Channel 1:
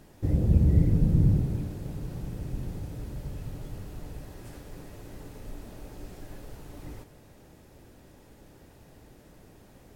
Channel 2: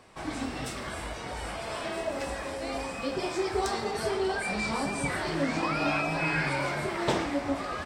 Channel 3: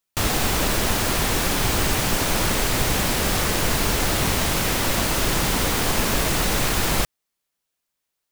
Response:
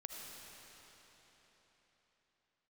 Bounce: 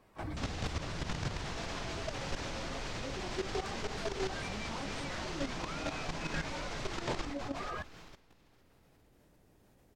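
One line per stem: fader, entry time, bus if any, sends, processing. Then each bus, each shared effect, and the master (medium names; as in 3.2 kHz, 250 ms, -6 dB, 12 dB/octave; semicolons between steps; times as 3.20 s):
-7.5 dB, 0.00 s, send -15 dB, no echo send, saturation -17 dBFS, distortion -14 dB
+0.5 dB, 0.00 s, no send, no echo send, reverb removal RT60 0.91 s; treble shelf 3.5 kHz -11.5 dB
-9.5 dB, 0.20 s, send -8 dB, echo send -12 dB, low-pass 6.3 kHz 24 dB/octave; hum notches 50/100/150/200/250/300/350/400 Hz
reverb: on, RT60 4.3 s, pre-delay 35 ms
echo: feedback delay 454 ms, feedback 31%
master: level held to a coarse grid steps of 13 dB; peak limiter -25 dBFS, peak gain reduction 9.5 dB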